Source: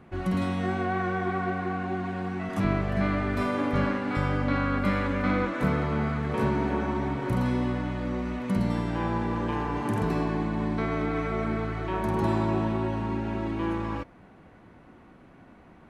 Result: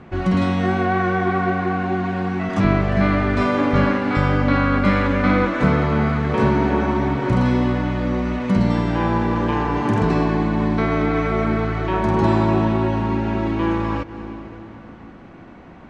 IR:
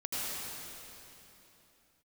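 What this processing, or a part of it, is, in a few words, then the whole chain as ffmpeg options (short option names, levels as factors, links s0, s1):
ducked reverb: -filter_complex "[0:a]lowpass=f=7100:w=0.5412,lowpass=f=7100:w=1.3066,asplit=3[s0][s1][s2];[1:a]atrim=start_sample=2205[s3];[s1][s3]afir=irnorm=-1:irlink=0[s4];[s2]apad=whole_len=700804[s5];[s4][s5]sidechaincompress=threshold=0.00398:ratio=4:attack=40:release=127,volume=0.2[s6];[s0][s6]amix=inputs=2:normalize=0,volume=2.66"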